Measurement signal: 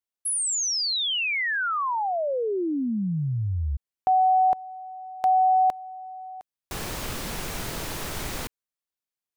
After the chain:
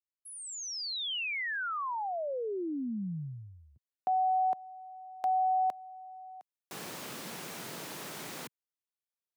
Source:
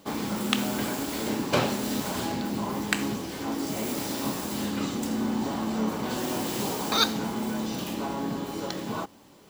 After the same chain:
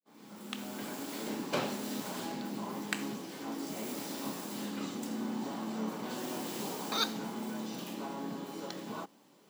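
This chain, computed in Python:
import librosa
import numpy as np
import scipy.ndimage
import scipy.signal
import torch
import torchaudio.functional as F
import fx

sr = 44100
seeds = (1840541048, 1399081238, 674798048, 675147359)

y = fx.fade_in_head(x, sr, length_s=1.14)
y = scipy.signal.sosfilt(scipy.signal.butter(4, 150.0, 'highpass', fs=sr, output='sos'), y)
y = F.gain(torch.from_numpy(y), -8.5).numpy()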